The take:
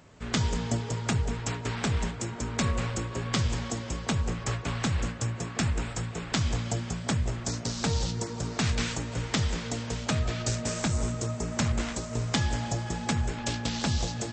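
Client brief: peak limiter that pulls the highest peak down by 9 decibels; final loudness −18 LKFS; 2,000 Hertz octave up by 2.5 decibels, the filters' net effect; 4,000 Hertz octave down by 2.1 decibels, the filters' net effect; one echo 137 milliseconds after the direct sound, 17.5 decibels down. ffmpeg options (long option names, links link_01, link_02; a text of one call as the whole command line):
ffmpeg -i in.wav -af "equalizer=frequency=2000:width_type=o:gain=4,equalizer=frequency=4000:width_type=o:gain=-4,alimiter=limit=-20dB:level=0:latency=1,aecho=1:1:137:0.133,volume=13.5dB" out.wav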